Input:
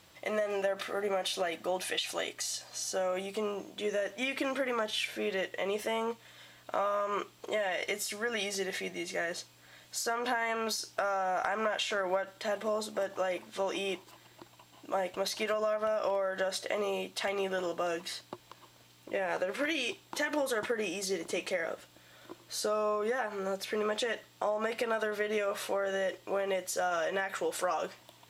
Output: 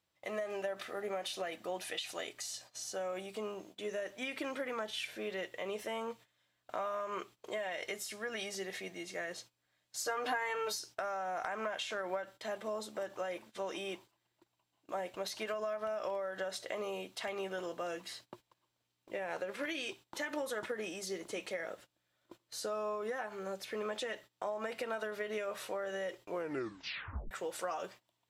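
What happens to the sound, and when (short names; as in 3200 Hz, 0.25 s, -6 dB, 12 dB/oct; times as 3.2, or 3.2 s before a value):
9.98–10.79 comb 6.7 ms, depth 96%
26.26 tape stop 1.05 s
whole clip: gate -47 dBFS, range -17 dB; gain -6.5 dB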